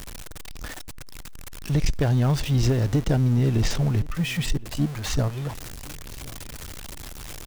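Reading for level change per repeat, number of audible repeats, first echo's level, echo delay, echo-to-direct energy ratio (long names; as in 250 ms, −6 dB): −11.5 dB, 2, −22.0 dB, 1,068 ms, −21.5 dB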